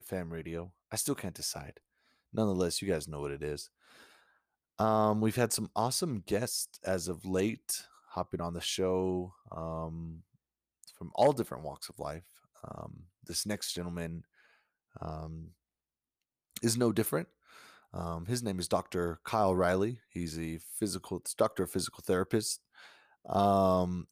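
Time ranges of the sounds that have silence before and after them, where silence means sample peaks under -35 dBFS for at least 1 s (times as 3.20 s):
4.79–15.33 s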